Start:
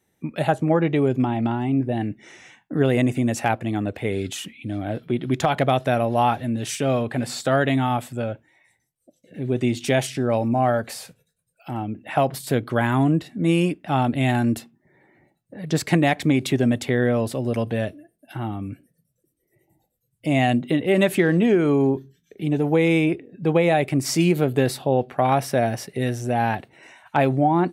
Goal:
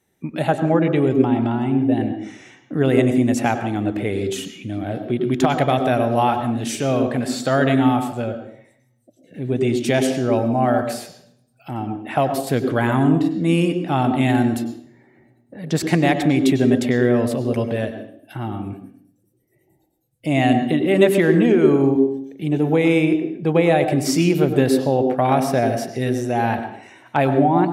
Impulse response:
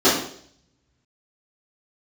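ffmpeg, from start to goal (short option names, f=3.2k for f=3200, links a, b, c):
-filter_complex "[0:a]asplit=2[a][b];[1:a]atrim=start_sample=2205,adelay=91[c];[b][c]afir=irnorm=-1:irlink=0,volume=-30dB[d];[a][d]amix=inputs=2:normalize=0,volume=1dB"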